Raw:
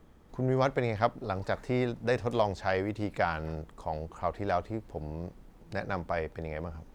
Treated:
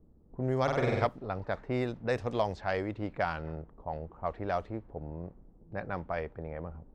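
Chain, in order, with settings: level-controlled noise filter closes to 390 Hz, open at -23.5 dBFS; 0.63–1.07 s: flutter echo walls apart 8.3 m, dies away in 1.2 s; trim -2.5 dB

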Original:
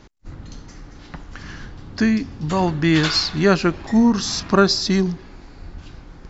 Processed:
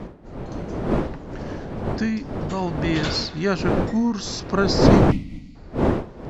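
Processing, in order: wind noise 410 Hz -17 dBFS; time-frequency box 5.12–5.56 s, 310–1900 Hz -23 dB; trim -6.5 dB

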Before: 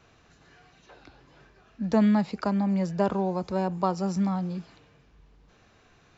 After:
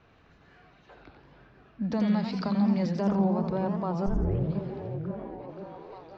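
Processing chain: 1.92–3.03 s: peaking EQ 4.8 kHz +13.5 dB 1.2 oct; peak limiter -20 dBFS, peak gain reduction 9.5 dB; 4.06 s: tape start 0.48 s; distance through air 220 m; repeats whose band climbs or falls 524 ms, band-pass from 180 Hz, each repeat 0.7 oct, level -3 dB; modulated delay 86 ms, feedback 49%, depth 213 cents, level -7 dB

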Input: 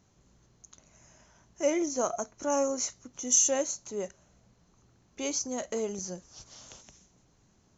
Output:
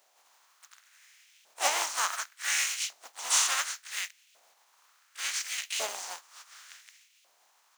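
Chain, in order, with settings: spectral contrast reduction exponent 0.29; harmony voices +5 st -5 dB; LFO high-pass saw up 0.69 Hz 620–2800 Hz; trim -3 dB

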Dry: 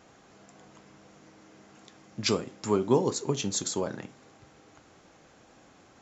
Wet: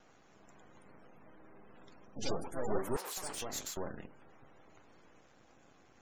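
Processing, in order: single-diode clipper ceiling -24 dBFS; half-wave rectifier; 2.96–3.77 s: high-pass 880 Hz 12 dB/octave; ever faster or slower copies 430 ms, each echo +4 st, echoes 3; spectral gate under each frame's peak -30 dB strong; trim -2.5 dB

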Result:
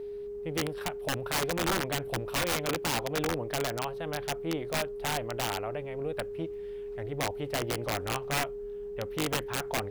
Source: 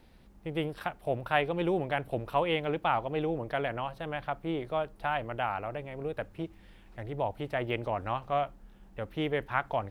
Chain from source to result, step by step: whistle 410 Hz -36 dBFS; integer overflow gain 23 dB

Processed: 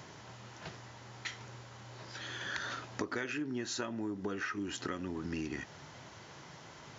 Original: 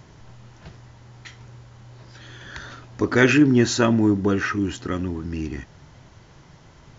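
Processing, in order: high-pass 99 Hz; bass shelf 290 Hz -10 dB; compression 20:1, threshold -36 dBFS, peak gain reduction 24 dB; trim +2.5 dB

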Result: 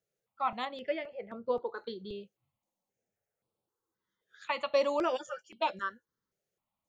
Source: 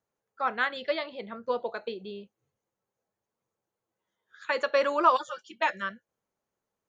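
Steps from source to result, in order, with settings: 0.65–1.78 s: treble shelf 2.3 kHz -10 dB; stepped phaser 3.8 Hz 260–6400 Hz

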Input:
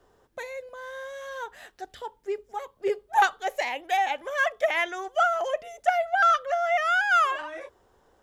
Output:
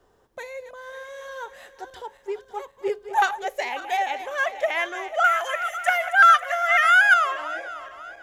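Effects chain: backward echo that repeats 272 ms, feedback 63%, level -12 dB; 5.24–7.14 s: FFT filter 110 Hz 0 dB, 160 Hz -23 dB, 1.8 kHz +11 dB, 5.3 kHz +3 dB, 10 kHz +14 dB

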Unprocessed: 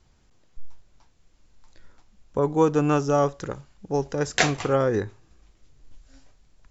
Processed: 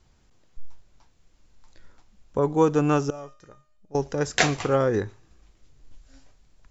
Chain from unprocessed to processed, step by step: 3.10–3.95 s: feedback comb 610 Hz, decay 0.42 s, mix 90%; feedback echo behind a high-pass 117 ms, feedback 32%, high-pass 2.7 kHz, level -20.5 dB

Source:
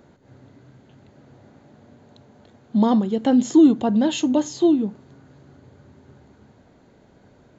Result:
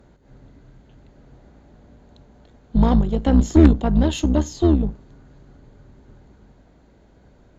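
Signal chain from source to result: octave divider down 2 oct, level +3 dB; Chebyshev shaper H 4 -15 dB, 6 -19 dB, 8 -22 dB, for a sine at -1 dBFS; trim -2 dB

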